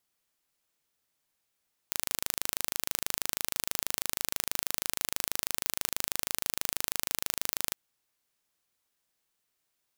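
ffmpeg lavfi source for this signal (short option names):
-f lavfi -i "aevalsrc='0.794*eq(mod(n,1683),0)':d=5.82:s=44100"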